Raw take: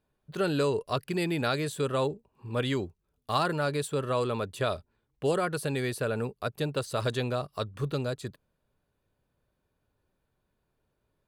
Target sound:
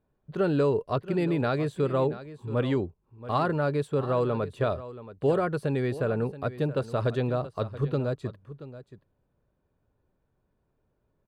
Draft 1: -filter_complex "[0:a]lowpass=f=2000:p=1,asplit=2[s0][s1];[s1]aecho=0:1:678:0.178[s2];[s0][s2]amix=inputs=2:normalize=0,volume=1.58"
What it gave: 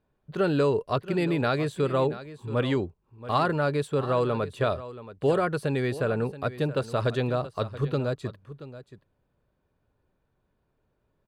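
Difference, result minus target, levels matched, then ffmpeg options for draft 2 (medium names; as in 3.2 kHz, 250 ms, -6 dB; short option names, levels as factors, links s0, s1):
2 kHz band +3.0 dB
-filter_complex "[0:a]lowpass=f=930:p=1,asplit=2[s0][s1];[s1]aecho=0:1:678:0.178[s2];[s0][s2]amix=inputs=2:normalize=0,volume=1.58"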